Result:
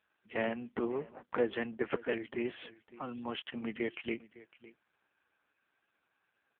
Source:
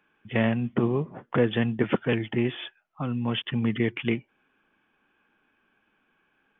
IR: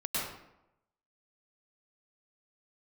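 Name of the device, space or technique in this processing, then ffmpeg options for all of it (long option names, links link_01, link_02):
satellite phone: -af "highpass=360,lowpass=3200,aecho=1:1:557:0.112,volume=-4.5dB" -ar 8000 -c:a libopencore_amrnb -b:a 5900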